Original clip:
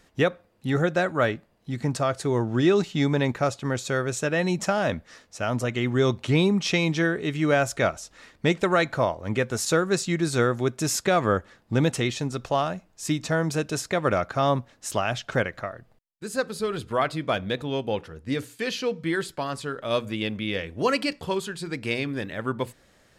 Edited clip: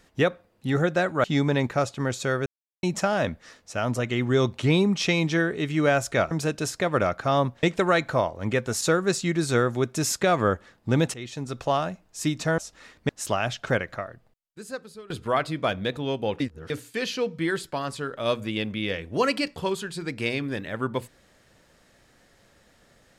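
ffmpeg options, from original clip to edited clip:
-filter_complex "[0:a]asplit=12[a][b][c][d][e][f][g][h][i][j][k][l];[a]atrim=end=1.242[m];[b]atrim=start=2.888:end=4.11,asetpts=PTS-STARTPTS,afade=t=out:st=1.218:d=0.004:c=hsin[n];[c]atrim=start=4.11:end=4.48,asetpts=PTS-STARTPTS,volume=0[o];[d]atrim=start=4.48:end=7.962,asetpts=PTS-STARTPTS,afade=t=in:d=0.004:c=hsin[p];[e]atrim=start=13.418:end=14.742[q];[f]atrim=start=8.468:end=11.98,asetpts=PTS-STARTPTS,afade=t=out:st=3.508:d=0.004:c=hsin:silence=0.133352[r];[g]atrim=start=11.98:end=13.422,asetpts=PTS-STARTPTS,afade=t=in:d=0.5:silence=0.133352[s];[h]atrim=start=7.958:end=8.472[t];[i]atrim=start=14.738:end=16.75,asetpts=PTS-STARTPTS,afade=t=out:st=0.882:d=1.13:silence=0.0891251[u];[j]atrim=start=16.75:end=18.052,asetpts=PTS-STARTPTS,afade=t=in:d=0.004:c=hsin:silence=0.0891251[v];[k]atrim=start=18.048:end=18.352,asetpts=PTS-STARTPTS,areverse[w];[l]atrim=start=18.348[x];[n][o][p]concat=n=3:v=0:a=1[y];[m][y]acrossfade=d=0.004:c1=hsin:c2=hsin[z];[z][q]acrossfade=d=0.004:c1=hsin:c2=hsin[aa];[r][s]concat=n=2:v=0:a=1[ab];[aa][ab]acrossfade=d=0.004:c1=hsin:c2=hsin[ac];[ac][t]acrossfade=d=0.004:c1=hsin:c2=hsin[ad];[u][v]concat=n=2:v=0:a=1[ae];[ad][ae]acrossfade=d=0.004:c1=hsin:c2=hsin[af];[af][w]acrossfade=d=0.004:c1=hsin:c2=hsin[ag];[ag][x]acrossfade=d=0.004:c1=hsin:c2=hsin"

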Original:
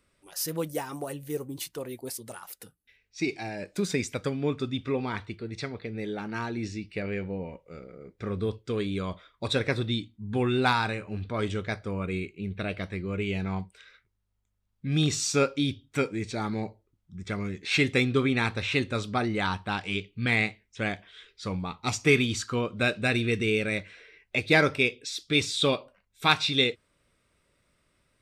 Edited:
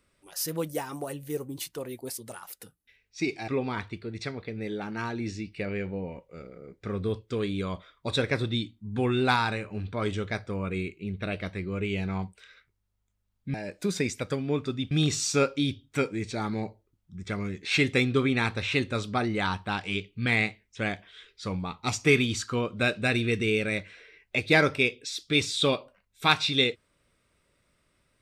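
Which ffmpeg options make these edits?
-filter_complex "[0:a]asplit=4[a][b][c][d];[a]atrim=end=3.482[e];[b]atrim=start=4.848:end=14.912[f];[c]atrim=start=3.478:end=4.852[g];[d]atrim=start=14.908[h];[e][f]acrossfade=d=0.004:c1=hsin:c2=hsin[i];[i][g]acrossfade=d=0.004:c1=hsin:c2=hsin[j];[j][h]acrossfade=d=0.004:c1=hsin:c2=hsin"

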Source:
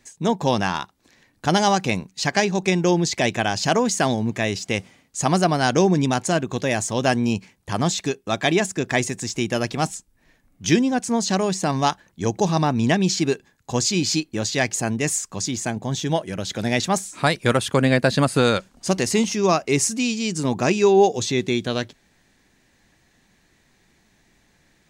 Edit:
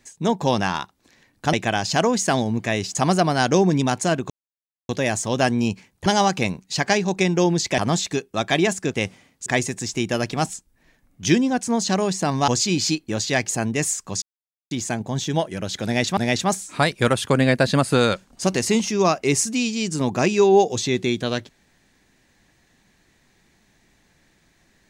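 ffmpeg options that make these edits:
-filter_complex "[0:a]asplit=11[a][b][c][d][e][f][g][h][i][j][k];[a]atrim=end=1.532[l];[b]atrim=start=3.248:end=4.672[m];[c]atrim=start=5.188:end=6.54,asetpts=PTS-STARTPTS,afade=t=out:st=1.348:d=0.004:c=hsin,apad=pad_dur=0.59[n];[d]atrim=start=6.54:end=7.712,asetpts=PTS-STARTPTS,afade=t=in:d=0.004:c=hsin[o];[e]atrim=start=1.528:end=3.252[p];[f]atrim=start=7.708:end=8.872[q];[g]atrim=start=4.668:end=5.192[r];[h]atrim=start=8.868:end=11.892[s];[i]atrim=start=13.728:end=15.47,asetpts=PTS-STARTPTS,afade=t=out:st=1.738:d=0.004:c=hsin,apad=pad_dur=0.49[t];[j]atrim=start=15.47:end=16.932,asetpts=PTS-STARTPTS,afade=t=in:d=0.004:c=hsin[u];[k]atrim=start=16.608[v];[l][m]acrossfade=d=0.004:c1=hsin:c2=hsin[w];[n][o]concat=n=2:v=0:a=1[x];[w][x]acrossfade=d=0.004:c1=hsin:c2=hsin[y];[y][p]acrossfade=d=0.004:c1=hsin:c2=hsin[z];[z][q]acrossfade=d=0.004:c1=hsin:c2=hsin[aa];[aa][r]acrossfade=d=0.004:c1=hsin:c2=hsin[ab];[ab][s]acrossfade=d=0.004:c1=hsin:c2=hsin[ac];[t][u]concat=n=2:v=0:a=1[ad];[ac][ad]acrossfade=d=0.004:c1=hsin:c2=hsin[ae];[ae][v]acrossfade=d=0.004:c1=hsin:c2=hsin"

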